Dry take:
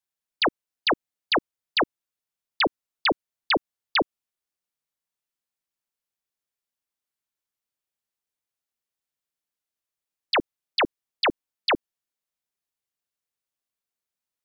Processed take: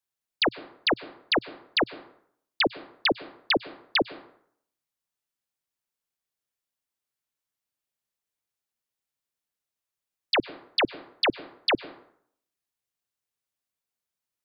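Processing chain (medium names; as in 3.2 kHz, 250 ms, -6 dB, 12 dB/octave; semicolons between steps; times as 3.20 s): peaking EQ 120 Hz +4.5 dB 0.34 oct; plate-style reverb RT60 0.64 s, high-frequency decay 0.65×, pre-delay 90 ms, DRR 18.5 dB; dynamic bell 1.1 kHz, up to -7 dB, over -38 dBFS, Q 1.8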